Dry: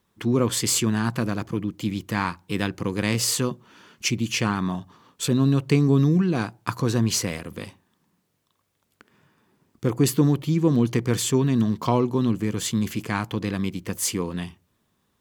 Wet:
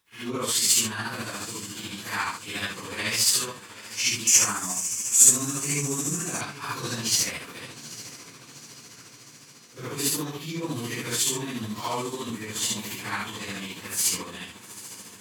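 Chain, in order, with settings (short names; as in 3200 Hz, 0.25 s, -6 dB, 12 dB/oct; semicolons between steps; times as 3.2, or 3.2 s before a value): phase scrambler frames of 0.2 s; tilt shelf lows -9 dB, about 760 Hz; diffused feedback echo 0.838 s, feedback 61%, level -15 dB; tremolo 14 Hz, depth 41%; 4.27–6.41 resonant high shelf 5300 Hz +10.5 dB, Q 3; gain -3.5 dB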